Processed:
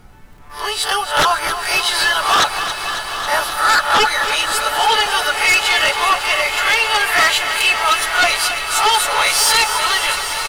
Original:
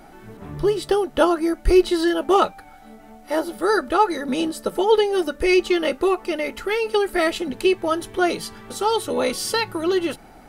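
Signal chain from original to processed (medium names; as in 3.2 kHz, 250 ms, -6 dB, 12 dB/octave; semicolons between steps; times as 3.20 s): reverse spectral sustain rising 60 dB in 0.31 s; gate -32 dBFS, range -16 dB; high-pass 860 Hz 24 dB/octave; comb 6.9 ms, depth 56%; added noise brown -53 dBFS; sine folder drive 8 dB, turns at -9.5 dBFS; echo that smears into a reverb 963 ms, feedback 67%, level -12 dB; bit-crushed delay 274 ms, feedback 80%, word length 7-bit, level -10 dB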